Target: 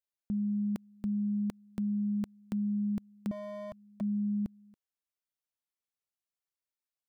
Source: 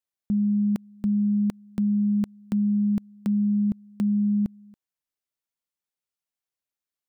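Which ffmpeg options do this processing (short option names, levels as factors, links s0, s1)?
-filter_complex "[0:a]equalizer=f=190:w=1.5:g=-3,asettb=1/sr,asplit=3[s0][s1][s2];[s0]atrim=end=3.314[s3];[s1]atrim=start=3.31:end=4.01,asetpts=PTS-STARTPTS,afade=t=in:d=0.004:c=qsin,afade=t=out:st=0.696:d=0.004:c=qsin,aeval=exprs='0.0376*(abs(mod(val(0)/0.0376+3,4)-2)-1)':c=same[s4];[s2]atrim=start=4.006[s5];[s3][s4]acrossfade=d=0.004:c1=hsin:c2=qsin[s6];[s6][s5]acrossfade=d=0.004:c1=qsin:c2=hsin,volume=0.501"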